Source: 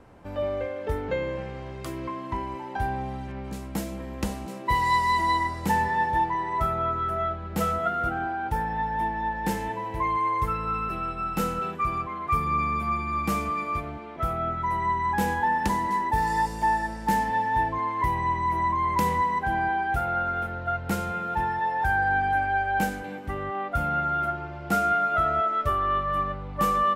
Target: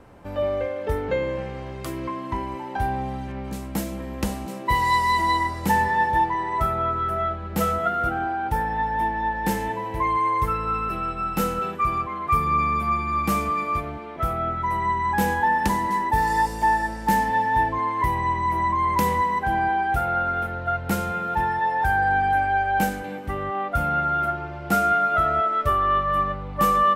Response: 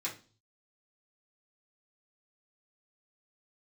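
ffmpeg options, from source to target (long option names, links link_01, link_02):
-filter_complex "[0:a]asplit=2[link_01][link_02];[link_02]highshelf=frequency=5600:width_type=q:width=1.5:gain=10.5[link_03];[1:a]atrim=start_sample=2205,asetrate=66150,aresample=44100[link_04];[link_03][link_04]afir=irnorm=-1:irlink=0,volume=-15dB[link_05];[link_01][link_05]amix=inputs=2:normalize=0,volume=3dB"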